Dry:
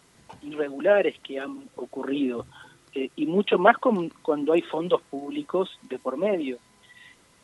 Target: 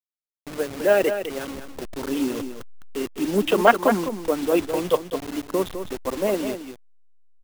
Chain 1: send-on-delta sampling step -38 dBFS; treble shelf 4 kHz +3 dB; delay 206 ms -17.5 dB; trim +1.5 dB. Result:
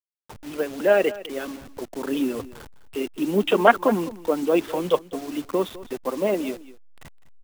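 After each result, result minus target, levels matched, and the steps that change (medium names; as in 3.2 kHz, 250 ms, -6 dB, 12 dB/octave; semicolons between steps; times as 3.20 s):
echo-to-direct -8.5 dB; send-on-delta sampling: distortion -6 dB
change: delay 206 ms -9 dB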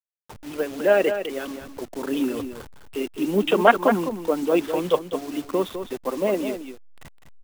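send-on-delta sampling: distortion -6 dB
change: send-on-delta sampling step -31.5 dBFS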